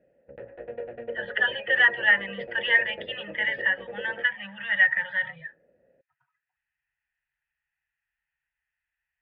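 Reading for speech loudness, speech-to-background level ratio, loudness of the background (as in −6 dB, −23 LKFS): −24.0 LKFS, 16.0 dB, −40.0 LKFS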